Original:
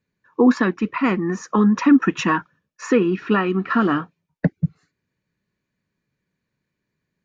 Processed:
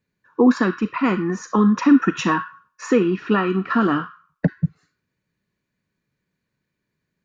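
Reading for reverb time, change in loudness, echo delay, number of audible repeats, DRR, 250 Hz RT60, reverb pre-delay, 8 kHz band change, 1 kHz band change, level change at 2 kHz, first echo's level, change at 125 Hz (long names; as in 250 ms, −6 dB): 0.45 s, 0.0 dB, no echo audible, no echo audible, 9.5 dB, 0.45 s, 34 ms, can't be measured, 0.0 dB, −1.0 dB, no echo audible, 0.0 dB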